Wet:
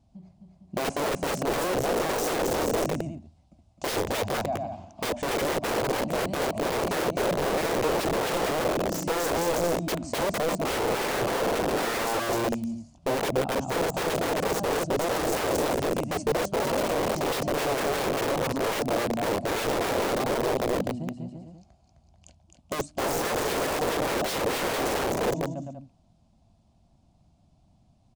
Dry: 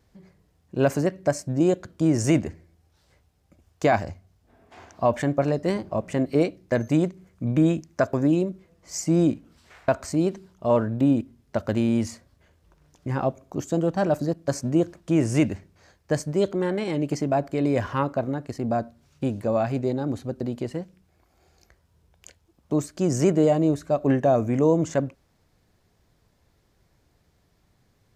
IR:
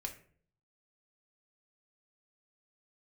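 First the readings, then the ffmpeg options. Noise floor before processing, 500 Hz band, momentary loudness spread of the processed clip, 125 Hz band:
-66 dBFS, -1.0 dB, 6 LU, -8.5 dB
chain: -filter_complex "[0:a]asplit=2[a][b];[b]aecho=0:1:260|455|601.2|710.9|793.2:0.631|0.398|0.251|0.158|0.1[c];[a][c]amix=inputs=2:normalize=0,aresample=22050,aresample=44100,firequalizer=gain_entry='entry(130,0);entry(230,1);entry(450,-28);entry(660,-3);entry(1800,-21);entry(2600,-7)':delay=0.05:min_phase=1,aeval=exprs='(mod(22.4*val(0)+1,2)-1)/22.4':c=same,equalizer=f=470:t=o:w=1.5:g=11.5"

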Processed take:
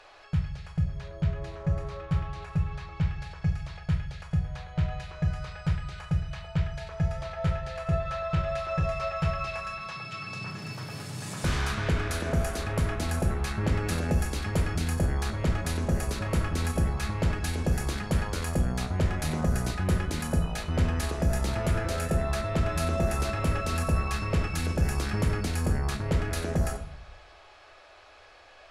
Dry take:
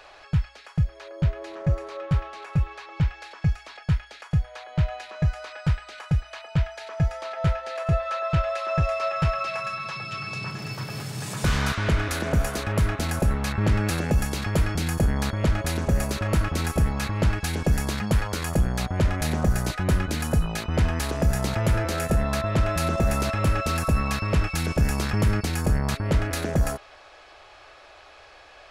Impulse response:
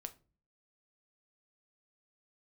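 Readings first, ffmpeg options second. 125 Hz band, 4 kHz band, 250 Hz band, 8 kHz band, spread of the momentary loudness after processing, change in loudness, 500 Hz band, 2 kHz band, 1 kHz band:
-3.5 dB, -4.5 dB, -4.0 dB, -4.0 dB, 5 LU, -4.0 dB, -4.0 dB, -4.5 dB, -4.5 dB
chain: -filter_complex "[1:a]atrim=start_sample=2205,asetrate=23373,aresample=44100[a];[0:a][a]afir=irnorm=-1:irlink=0,volume=-3.5dB"

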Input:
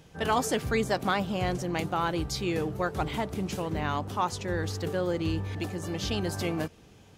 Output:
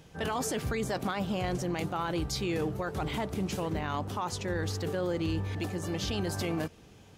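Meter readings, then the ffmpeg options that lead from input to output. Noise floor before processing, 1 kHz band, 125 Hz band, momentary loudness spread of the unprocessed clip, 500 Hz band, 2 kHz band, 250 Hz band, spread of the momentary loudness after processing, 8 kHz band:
-54 dBFS, -5.0 dB, -1.5 dB, 5 LU, -3.0 dB, -4.0 dB, -1.5 dB, 3 LU, -1.0 dB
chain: -af "alimiter=limit=-23.5dB:level=0:latency=1:release=11"

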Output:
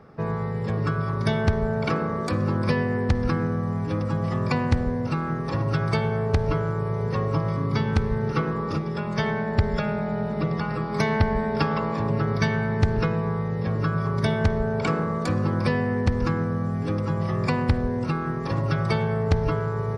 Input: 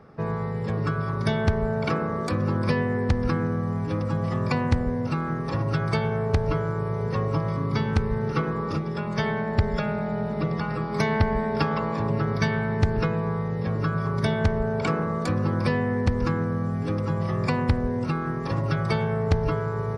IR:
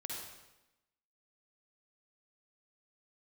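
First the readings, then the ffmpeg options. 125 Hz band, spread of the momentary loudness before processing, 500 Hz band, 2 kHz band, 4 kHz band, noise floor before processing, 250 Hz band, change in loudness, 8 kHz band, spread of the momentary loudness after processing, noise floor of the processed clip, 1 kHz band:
+1.0 dB, 4 LU, +0.5 dB, +0.5 dB, +1.0 dB, -29 dBFS, +0.5 dB, +1.0 dB, n/a, 3 LU, -28 dBFS, +0.5 dB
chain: -filter_complex "[0:a]asplit=2[a][b];[b]lowpass=7.6k[c];[1:a]atrim=start_sample=2205,highshelf=f=6.4k:g=9.5[d];[c][d]afir=irnorm=-1:irlink=0,volume=-16.5dB[e];[a][e]amix=inputs=2:normalize=0"

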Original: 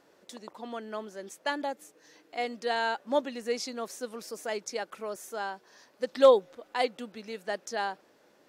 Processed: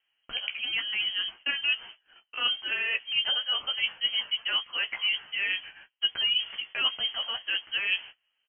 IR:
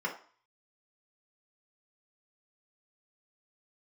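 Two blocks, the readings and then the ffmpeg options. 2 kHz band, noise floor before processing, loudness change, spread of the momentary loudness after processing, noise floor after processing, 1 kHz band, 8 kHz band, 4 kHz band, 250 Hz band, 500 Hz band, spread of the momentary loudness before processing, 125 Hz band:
+8.5 dB, -64 dBFS, +3.5 dB, 5 LU, -78 dBFS, -10.0 dB, under -35 dB, +17.0 dB, under -15 dB, -23.0 dB, 17 LU, n/a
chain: -filter_complex "[0:a]agate=range=-31dB:threshold=-54dB:ratio=16:detection=peak,asplit=2[a][b];[b]acontrast=81,volume=2.5dB[c];[a][c]amix=inputs=2:normalize=0,alimiter=limit=-10.5dB:level=0:latency=1:release=43,areverse,acompressor=threshold=-31dB:ratio=6,areverse,flanger=delay=6.4:depth=9.8:regen=26:speed=0.69:shape=triangular,asplit=2[d][e];[e]adelay=16,volume=-8.5dB[f];[d][f]amix=inputs=2:normalize=0,lowpass=f=2.9k:t=q:w=0.5098,lowpass=f=2.9k:t=q:w=0.6013,lowpass=f=2.9k:t=q:w=0.9,lowpass=f=2.9k:t=q:w=2.563,afreqshift=-3400,volume=8dB"

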